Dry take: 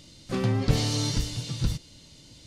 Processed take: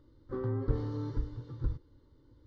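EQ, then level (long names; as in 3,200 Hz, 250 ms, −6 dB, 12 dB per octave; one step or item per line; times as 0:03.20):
head-to-tape spacing loss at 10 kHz 44 dB
high-shelf EQ 4,100 Hz −11 dB
phaser with its sweep stopped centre 680 Hz, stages 6
−2.5 dB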